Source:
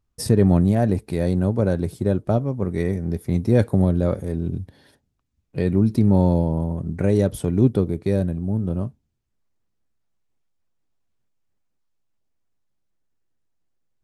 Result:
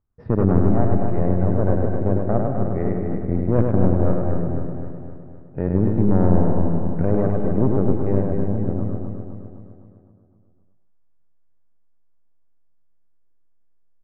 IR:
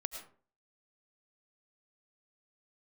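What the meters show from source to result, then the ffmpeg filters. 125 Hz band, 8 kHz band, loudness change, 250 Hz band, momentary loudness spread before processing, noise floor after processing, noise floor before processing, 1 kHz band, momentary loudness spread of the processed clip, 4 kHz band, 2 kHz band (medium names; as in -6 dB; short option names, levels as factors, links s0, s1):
0.0 dB, under -35 dB, 0.0 dB, 0.0 dB, 9 LU, -55 dBFS, -73 dBFS, +4.0 dB, 13 LU, no reading, -3.0 dB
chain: -filter_complex "[0:a]aeval=exprs='if(lt(val(0),0),0.708*val(0),val(0))':c=same,aeval=exprs='0.422*(cos(1*acos(clip(val(0)/0.422,-1,1)))-cos(1*PI/2))+0.106*(cos(4*acos(clip(val(0)/0.422,-1,1)))-cos(4*PI/2))':c=same,lowpass=f=1700:w=0.5412,lowpass=f=1700:w=1.3066,aecho=1:1:256|512|768|1024|1280|1536|1792:0.501|0.266|0.141|0.0746|0.0395|0.021|0.0111,asplit=2[s0][s1];[1:a]atrim=start_sample=2205,asetrate=52920,aresample=44100,adelay=101[s2];[s1][s2]afir=irnorm=-1:irlink=0,volume=0.944[s3];[s0][s3]amix=inputs=2:normalize=0,volume=0.75"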